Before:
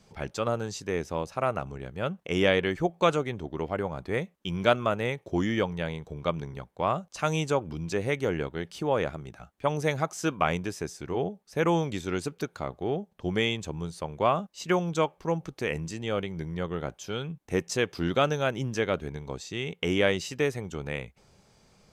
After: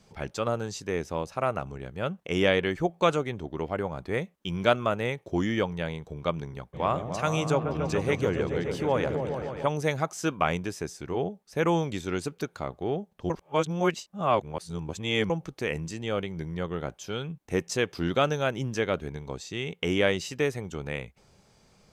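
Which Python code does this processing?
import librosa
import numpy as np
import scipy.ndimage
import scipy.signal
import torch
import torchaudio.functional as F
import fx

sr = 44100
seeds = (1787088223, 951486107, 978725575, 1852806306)

y = fx.echo_opening(x, sr, ms=142, hz=400, octaves=1, feedback_pct=70, wet_db=-3, at=(6.73, 9.66), fade=0.02)
y = fx.edit(y, sr, fx.reverse_span(start_s=13.3, length_s=2.0), tone=tone)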